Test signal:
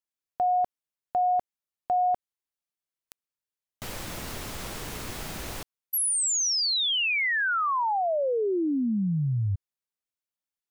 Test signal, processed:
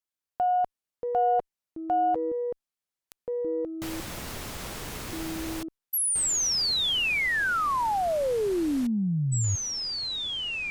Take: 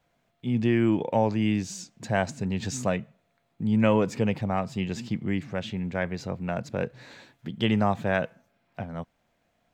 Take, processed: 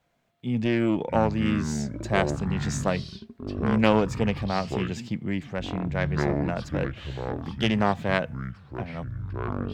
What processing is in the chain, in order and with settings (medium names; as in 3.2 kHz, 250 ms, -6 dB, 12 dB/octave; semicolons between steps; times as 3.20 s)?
Chebyshev shaper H 2 -7 dB, 3 -37 dB, 8 -31 dB, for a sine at -8.5 dBFS; ever faster or slower copies 434 ms, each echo -7 st, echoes 2, each echo -6 dB